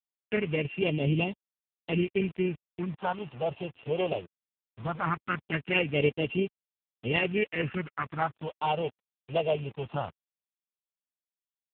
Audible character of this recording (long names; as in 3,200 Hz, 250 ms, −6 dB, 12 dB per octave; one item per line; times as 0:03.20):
a buzz of ramps at a fixed pitch in blocks of 16 samples
phaser sweep stages 4, 0.19 Hz, lowest notch 260–1,400 Hz
a quantiser's noise floor 8 bits, dither none
AMR narrowband